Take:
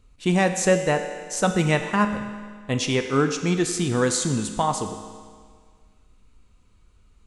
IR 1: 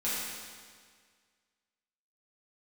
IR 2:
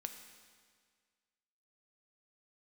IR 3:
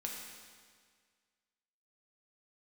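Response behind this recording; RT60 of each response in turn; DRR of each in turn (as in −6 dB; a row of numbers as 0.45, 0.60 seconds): 2; 1.8, 1.8, 1.8 seconds; −10.5, 6.0, −1.5 decibels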